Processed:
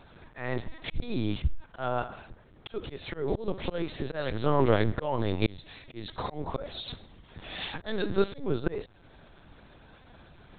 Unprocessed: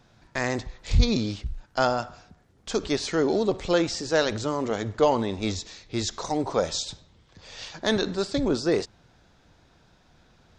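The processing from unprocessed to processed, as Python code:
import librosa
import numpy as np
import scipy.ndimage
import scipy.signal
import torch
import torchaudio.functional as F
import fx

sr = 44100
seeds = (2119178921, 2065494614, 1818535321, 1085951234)

y = fx.lpc_vocoder(x, sr, seeds[0], excitation='pitch_kept', order=10)
y = fx.auto_swell(y, sr, attack_ms=486.0)
y = F.gain(torch.from_numpy(y), 5.5).numpy()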